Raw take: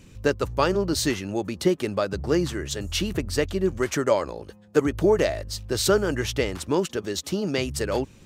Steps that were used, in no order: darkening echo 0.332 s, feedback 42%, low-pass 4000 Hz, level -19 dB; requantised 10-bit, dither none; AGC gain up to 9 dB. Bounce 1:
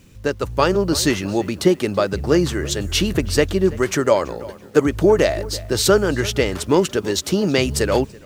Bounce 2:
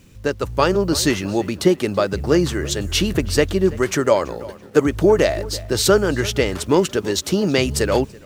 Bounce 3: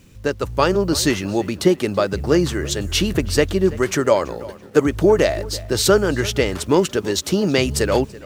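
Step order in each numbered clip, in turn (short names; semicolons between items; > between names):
darkening echo > requantised > AGC; requantised > darkening echo > AGC; requantised > AGC > darkening echo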